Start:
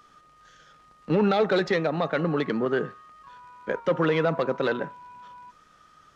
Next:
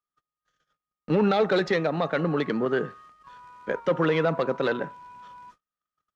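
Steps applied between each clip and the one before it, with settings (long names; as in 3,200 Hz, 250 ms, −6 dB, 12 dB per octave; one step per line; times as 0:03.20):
noise gate −50 dBFS, range −38 dB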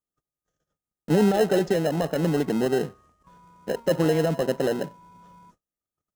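flat-topped bell 2,300 Hz −12.5 dB 2.4 octaves
in parallel at −6 dB: decimation without filtering 38×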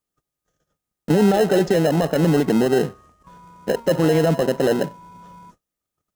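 brickwall limiter −16 dBFS, peak gain reduction 5.5 dB
level +7.5 dB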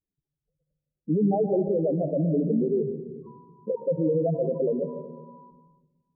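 expanding power law on the bin magnitudes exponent 3.5
linear-phase brick-wall low-pass 1,100 Hz
convolution reverb RT60 1.1 s, pre-delay 119 ms, DRR 8 dB
level −6.5 dB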